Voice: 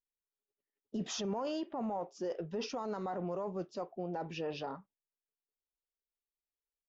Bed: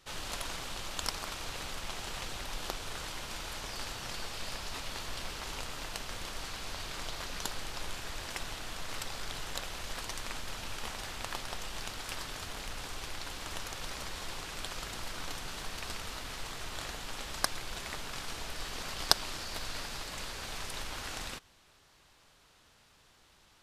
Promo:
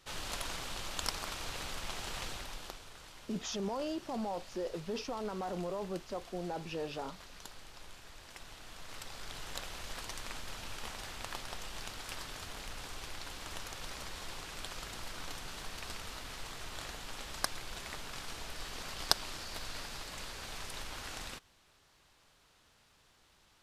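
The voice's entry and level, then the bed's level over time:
2.35 s, -0.5 dB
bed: 2.28 s -1 dB
2.92 s -12.5 dB
8.23 s -12.5 dB
9.58 s -3.5 dB

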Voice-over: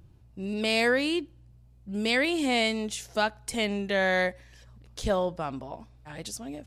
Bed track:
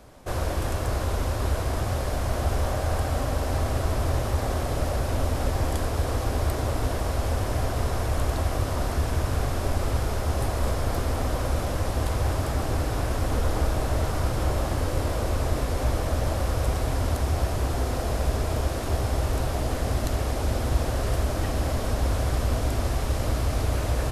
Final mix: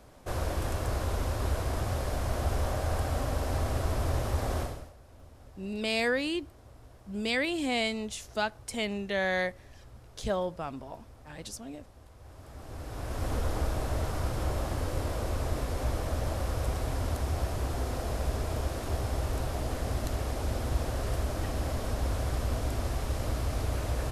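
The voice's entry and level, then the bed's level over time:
5.20 s, -4.0 dB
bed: 4.62 s -4.5 dB
4.95 s -28 dB
12.15 s -28 dB
13.26 s -6 dB

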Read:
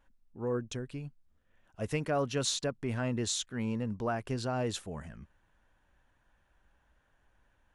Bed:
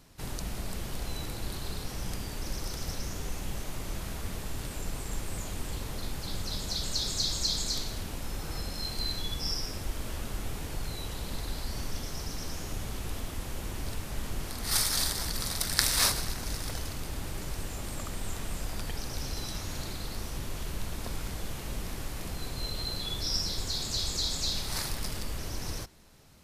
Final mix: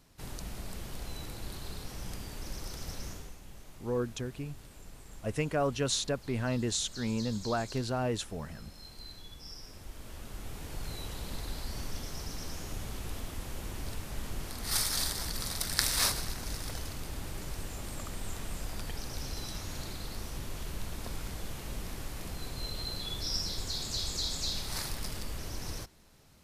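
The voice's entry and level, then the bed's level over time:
3.45 s, +1.0 dB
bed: 3.10 s -5 dB
3.38 s -14.5 dB
9.48 s -14.5 dB
10.91 s -3 dB

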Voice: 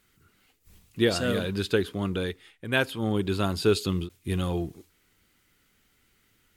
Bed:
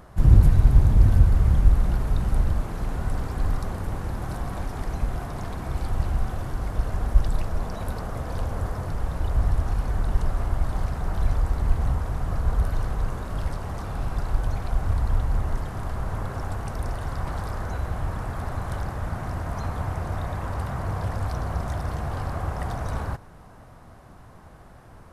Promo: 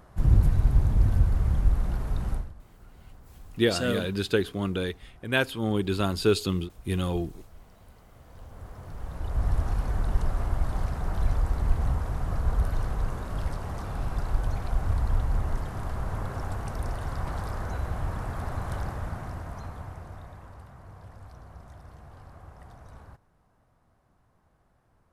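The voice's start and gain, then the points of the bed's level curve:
2.60 s, 0.0 dB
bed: 2.33 s -5.5 dB
2.54 s -23.5 dB
8.07 s -23.5 dB
9.55 s -2.5 dB
18.88 s -2.5 dB
20.73 s -19 dB

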